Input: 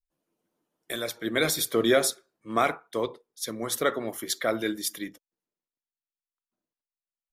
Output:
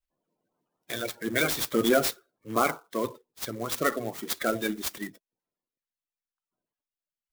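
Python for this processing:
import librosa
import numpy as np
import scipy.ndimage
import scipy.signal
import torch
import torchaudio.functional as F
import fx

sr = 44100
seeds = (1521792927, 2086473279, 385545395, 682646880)

y = fx.spec_quant(x, sr, step_db=30)
y = fx.clock_jitter(y, sr, seeds[0], jitter_ms=0.035)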